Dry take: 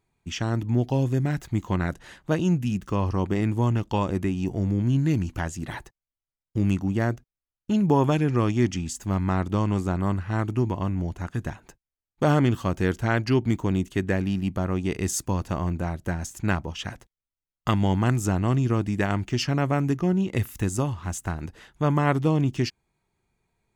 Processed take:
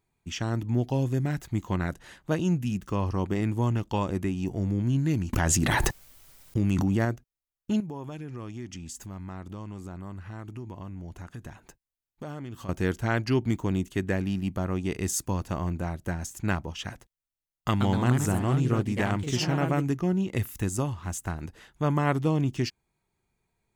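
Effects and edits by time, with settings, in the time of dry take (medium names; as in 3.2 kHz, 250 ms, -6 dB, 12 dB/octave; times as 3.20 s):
5.33–7.05 s: level flattener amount 100%
7.80–12.69 s: compression 3:1, threshold -36 dBFS
17.68–19.99 s: ever faster or slower copies 122 ms, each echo +2 st, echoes 2, each echo -6 dB
whole clip: treble shelf 9.4 kHz +5.5 dB; trim -3 dB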